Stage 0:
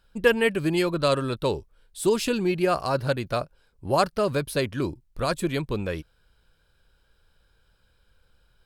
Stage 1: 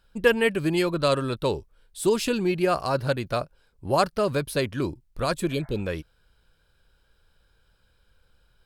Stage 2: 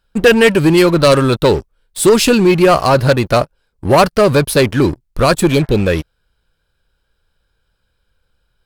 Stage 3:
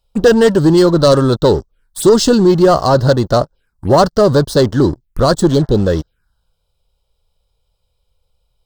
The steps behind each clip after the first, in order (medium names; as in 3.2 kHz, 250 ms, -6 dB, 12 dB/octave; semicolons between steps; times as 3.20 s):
spectral replace 5.53–5.79 s, 590–2200 Hz
waveshaping leveller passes 3; trim +4.5 dB
touch-sensitive phaser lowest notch 270 Hz, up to 2.4 kHz, full sweep at -14.5 dBFS; trim +1 dB